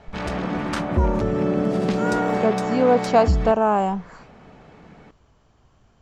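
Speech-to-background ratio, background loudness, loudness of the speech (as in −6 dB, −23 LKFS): 1.5 dB, −23.5 LKFS, −22.0 LKFS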